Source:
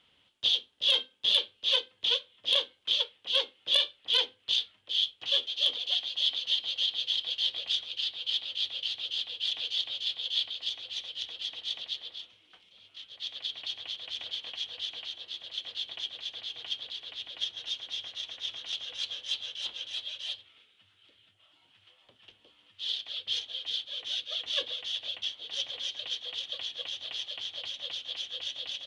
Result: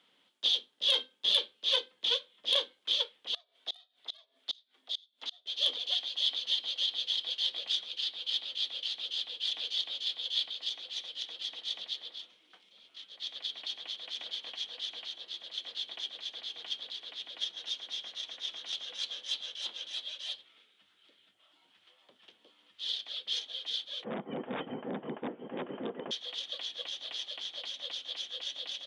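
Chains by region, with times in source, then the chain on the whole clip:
3.34–5.46 frequency shift +160 Hz + flipped gate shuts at -21 dBFS, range -31 dB
24.04–26.11 HPF 460 Hz 6 dB/oct + wrapped overs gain 25 dB + inverted band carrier 3600 Hz
whole clip: HPF 180 Hz 24 dB/oct; bell 2800 Hz -5.5 dB 0.41 oct

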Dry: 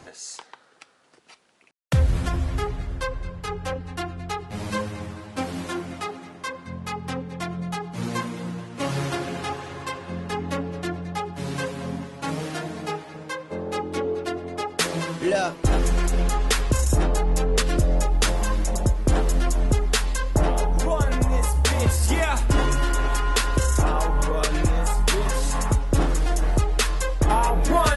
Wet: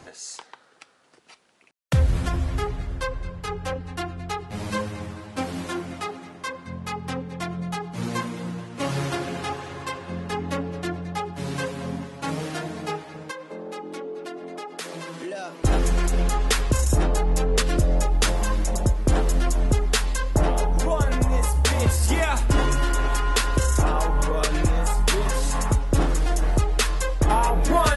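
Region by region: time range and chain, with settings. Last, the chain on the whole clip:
13.31–15.62 HPF 180 Hz 24 dB/oct + compressor 3:1, threshold -33 dBFS
whole clip: dry

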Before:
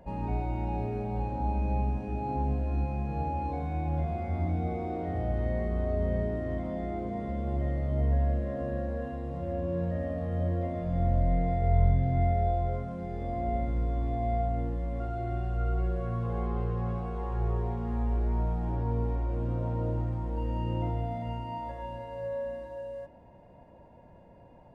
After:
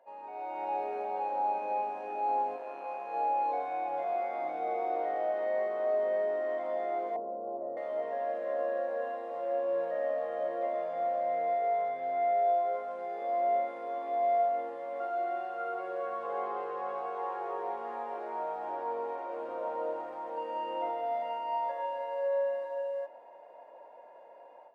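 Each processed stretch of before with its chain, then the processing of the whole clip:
2.56–3.14 HPF 320 Hz 6 dB/oct + core saturation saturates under 230 Hz
7.16–7.77 Bessel low-pass 660 Hz, order 6 + tilt -1.5 dB/oct
whole clip: AGC gain up to 12 dB; HPF 520 Hz 24 dB/oct; high shelf 2900 Hz -12 dB; gain -5 dB

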